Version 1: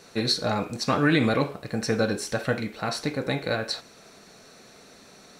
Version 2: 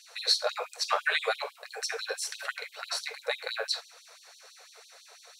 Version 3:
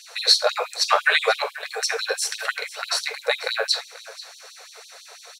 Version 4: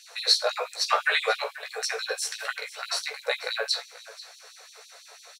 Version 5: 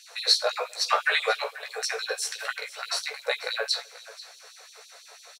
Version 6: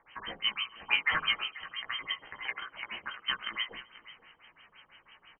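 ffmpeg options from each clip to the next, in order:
ffmpeg -i in.wav -af "afftfilt=real='re*gte(b*sr/1024,400*pow(3100/400,0.5+0.5*sin(2*PI*6*pts/sr)))':imag='im*gte(b*sr/1024,400*pow(3100/400,0.5+0.5*sin(2*PI*6*pts/sr)))':win_size=1024:overlap=0.75" out.wav
ffmpeg -i in.wav -af "aecho=1:1:486:0.133,volume=9dB" out.wav
ffmpeg -i in.wav -filter_complex "[0:a]asplit=2[link_01][link_02];[link_02]adelay=16,volume=-6dB[link_03];[link_01][link_03]amix=inputs=2:normalize=0,volume=-6dB" out.wav
ffmpeg -i in.wav -filter_complex "[0:a]asplit=2[link_01][link_02];[link_02]adelay=250.7,volume=-29dB,highshelf=frequency=4000:gain=-5.64[link_03];[link_01][link_03]amix=inputs=2:normalize=0" out.wav
ffmpeg -i in.wav -af "lowpass=frequency=3100:width_type=q:width=0.5098,lowpass=frequency=3100:width_type=q:width=0.6013,lowpass=frequency=3100:width_type=q:width=0.9,lowpass=frequency=3100:width_type=q:width=2.563,afreqshift=-3600,volume=-4dB" out.wav

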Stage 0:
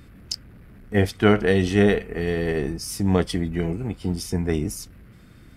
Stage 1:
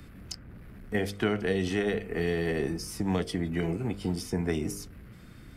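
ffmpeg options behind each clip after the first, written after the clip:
ffmpeg -i in.wav -filter_complex "[0:a]acrossover=split=140|490|2200[link_01][link_02][link_03][link_04];[link_01]acompressor=threshold=-38dB:ratio=4[link_05];[link_02]acompressor=threshold=-28dB:ratio=4[link_06];[link_03]acompressor=threshold=-35dB:ratio=4[link_07];[link_04]acompressor=threshold=-40dB:ratio=4[link_08];[link_05][link_06][link_07][link_08]amix=inputs=4:normalize=0,bandreject=frequency=50.28:width_type=h:width=4,bandreject=frequency=100.56:width_type=h:width=4,bandreject=frequency=150.84:width_type=h:width=4,bandreject=frequency=201.12:width_type=h:width=4,bandreject=frequency=251.4:width_type=h:width=4,bandreject=frequency=301.68:width_type=h:width=4,bandreject=frequency=351.96:width_type=h:width=4,bandreject=frequency=402.24:width_type=h:width=4,bandreject=frequency=452.52:width_type=h:width=4,bandreject=frequency=502.8:width_type=h:width=4,bandreject=frequency=553.08:width_type=h:width=4,bandreject=frequency=603.36:width_type=h:width=4,bandreject=frequency=653.64:width_type=h:width=4,bandreject=frequency=703.92:width_type=h:width=4" out.wav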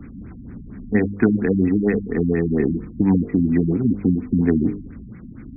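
ffmpeg -i in.wav -af "equalizer=frequency=250:width_type=o:width=0.67:gain=10,equalizer=frequency=630:width_type=o:width=0.67:gain=-7,equalizer=frequency=4000:width_type=o:width=0.67:gain=5,afftfilt=real='re*lt(b*sr/1024,280*pow(2600/280,0.5+0.5*sin(2*PI*4.3*pts/sr)))':imag='im*lt(b*sr/1024,280*pow(2600/280,0.5+0.5*sin(2*PI*4.3*pts/sr)))':win_size=1024:overlap=0.75,volume=8dB" out.wav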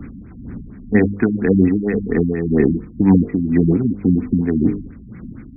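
ffmpeg -i in.wav -af "tremolo=f=1.9:d=0.58,volume=5.5dB" out.wav

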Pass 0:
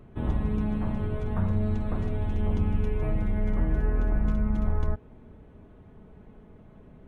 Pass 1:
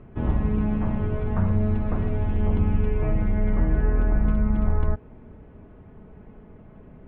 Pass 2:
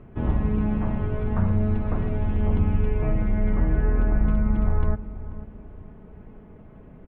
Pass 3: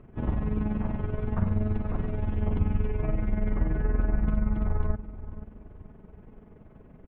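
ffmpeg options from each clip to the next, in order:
ffmpeg -i in.wav -af "lowpass=frequency=2900:width=0.5412,lowpass=frequency=2900:width=1.3066,volume=4dB" out.wav
ffmpeg -i in.wav -filter_complex "[0:a]asplit=2[link_01][link_02];[link_02]adelay=488,lowpass=frequency=1200:poles=1,volume=-14dB,asplit=2[link_03][link_04];[link_04]adelay=488,lowpass=frequency=1200:poles=1,volume=0.38,asplit=2[link_05][link_06];[link_06]adelay=488,lowpass=frequency=1200:poles=1,volume=0.38,asplit=2[link_07][link_08];[link_08]adelay=488,lowpass=frequency=1200:poles=1,volume=0.38[link_09];[link_01][link_03][link_05][link_07][link_09]amix=inputs=5:normalize=0" out.wav
ffmpeg -i in.wav -af "tremolo=f=21:d=0.571,volume=-2dB" out.wav

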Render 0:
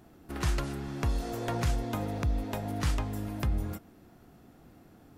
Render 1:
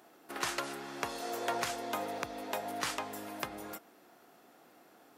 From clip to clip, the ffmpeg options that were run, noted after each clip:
ffmpeg -i in.wav -af "highpass=500,volume=2.5dB" out.wav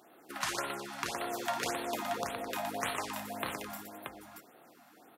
ffmpeg -i in.wav -filter_complex "[0:a]asplit=2[link_01][link_02];[link_02]aecho=0:1:53|117|212|629:0.376|0.531|0.251|0.531[link_03];[link_01][link_03]amix=inputs=2:normalize=0,afftfilt=real='re*(1-between(b*sr/1024,370*pow(6400/370,0.5+0.5*sin(2*PI*1.8*pts/sr))/1.41,370*pow(6400/370,0.5+0.5*sin(2*PI*1.8*pts/sr))*1.41))':imag='im*(1-between(b*sr/1024,370*pow(6400/370,0.5+0.5*sin(2*PI*1.8*pts/sr))/1.41,370*pow(6400/370,0.5+0.5*sin(2*PI*1.8*pts/sr))*1.41))':win_size=1024:overlap=0.75" out.wav

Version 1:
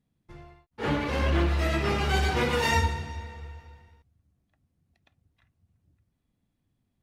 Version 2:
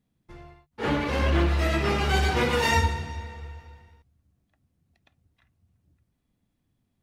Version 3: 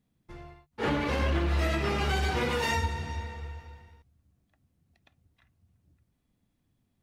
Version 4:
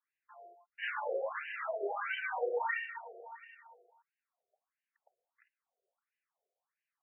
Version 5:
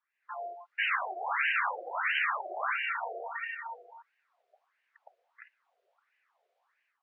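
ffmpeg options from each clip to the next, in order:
ffmpeg -i in.wav -af "bandreject=frequency=50:width_type=h:width=6,bandreject=frequency=100:width_type=h:width=6,bandreject=frequency=150:width_type=h:width=6,volume=2dB" out.wav
ffmpeg -i in.wav -af "alimiter=limit=-18.5dB:level=0:latency=1:release=262" out.wav
ffmpeg -i in.wav -af "afftfilt=real='re*between(b*sr/1024,510*pow(2200/510,0.5+0.5*sin(2*PI*1.5*pts/sr))/1.41,510*pow(2200/510,0.5+0.5*sin(2*PI*1.5*pts/sr))*1.41)':imag='im*between(b*sr/1024,510*pow(2200/510,0.5+0.5*sin(2*PI*1.5*pts/sr))/1.41,510*pow(2200/510,0.5+0.5*sin(2*PI*1.5*pts/sr))*1.41)':win_size=1024:overlap=0.75" out.wav
ffmpeg -i in.wav -af "afftfilt=real='re*lt(hypot(re,im),0.0355)':imag='im*lt(hypot(re,im),0.0355)':win_size=1024:overlap=0.75,highpass=750,lowpass=2500,dynaudnorm=framelen=100:gausssize=5:maxgain=11.5dB,volume=7.5dB" out.wav

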